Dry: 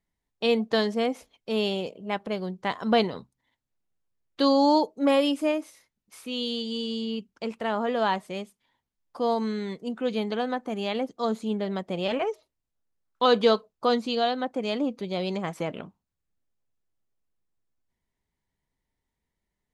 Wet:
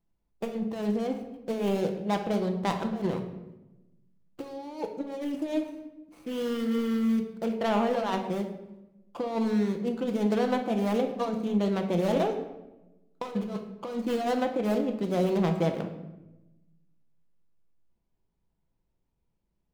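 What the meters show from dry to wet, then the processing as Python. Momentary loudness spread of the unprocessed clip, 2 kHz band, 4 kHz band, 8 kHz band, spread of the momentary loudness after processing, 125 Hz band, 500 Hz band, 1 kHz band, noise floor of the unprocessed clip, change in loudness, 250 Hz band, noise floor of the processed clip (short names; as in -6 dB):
11 LU, -6.0 dB, -11.5 dB, n/a, 14 LU, +5.5 dB, -3.0 dB, -4.5 dB, -84 dBFS, -2.5 dB, 0.0 dB, -76 dBFS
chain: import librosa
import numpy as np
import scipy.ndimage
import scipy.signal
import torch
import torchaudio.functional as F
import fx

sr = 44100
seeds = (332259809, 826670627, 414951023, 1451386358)

y = scipy.signal.medfilt(x, 25)
y = fx.over_compress(y, sr, threshold_db=-28.0, ratio=-0.5)
y = fx.room_shoebox(y, sr, seeds[0], volume_m3=440.0, walls='mixed', distance_m=0.74)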